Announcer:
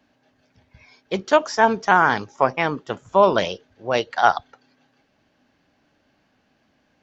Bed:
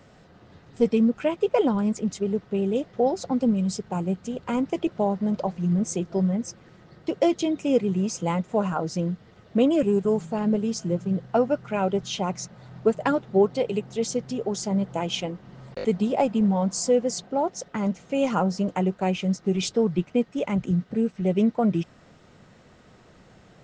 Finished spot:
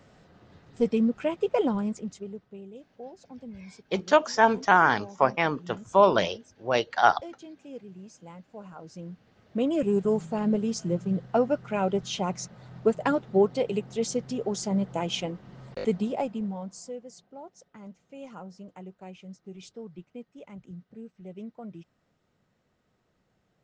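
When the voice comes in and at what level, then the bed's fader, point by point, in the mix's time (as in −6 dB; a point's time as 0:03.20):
2.80 s, −3.5 dB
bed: 0:01.75 −3.5 dB
0:02.71 −20.5 dB
0:08.54 −20.5 dB
0:09.97 −2 dB
0:15.86 −2 dB
0:17.04 −19.5 dB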